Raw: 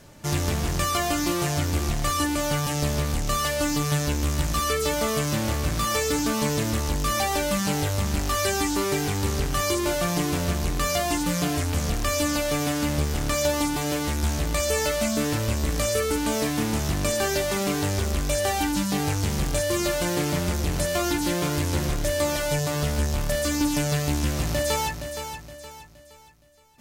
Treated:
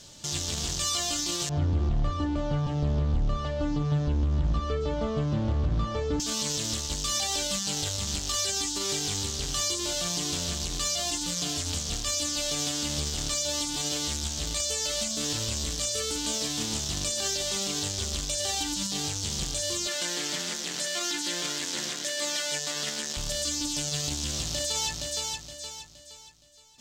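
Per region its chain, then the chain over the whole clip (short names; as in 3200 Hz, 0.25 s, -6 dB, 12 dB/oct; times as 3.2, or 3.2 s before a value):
1.49–6.2 LPF 1100 Hz + low shelf 190 Hz +9 dB
19.87–23.17 HPF 190 Hz 24 dB/oct + bell 1800 Hz +10 dB 0.86 oct
whole clip: band shelf 4900 Hz +15 dB; limiter -13 dBFS; gain -5.5 dB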